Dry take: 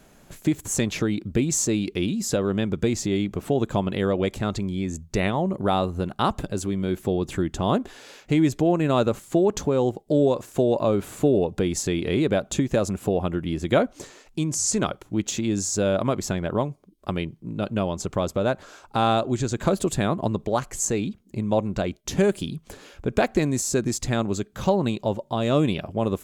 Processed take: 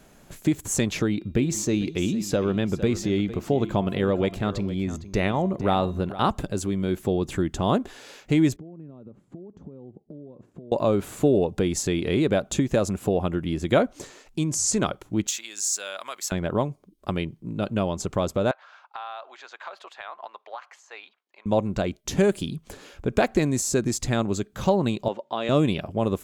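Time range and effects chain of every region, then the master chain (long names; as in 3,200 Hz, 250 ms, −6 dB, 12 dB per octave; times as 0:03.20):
0:01.08–0:06.29: parametric band 8,400 Hz −7 dB 1.2 octaves + hum removal 343.3 Hz, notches 19 + single-tap delay 457 ms −14.5 dB
0:08.56–0:10.72: downward compressor 12 to 1, threshold −34 dBFS + resonant band-pass 190 Hz, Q 1.1
0:15.27–0:16.32: high-pass filter 1,400 Hz + high-shelf EQ 12,000 Hz +11.5 dB
0:18.51–0:21.46: high-pass filter 820 Hz 24 dB per octave + downward compressor 12 to 1, threshold −29 dBFS + high-frequency loss of the air 280 metres
0:25.08–0:25.49: band-pass filter 210–2,700 Hz + spectral tilt +3 dB per octave
whole clip: no processing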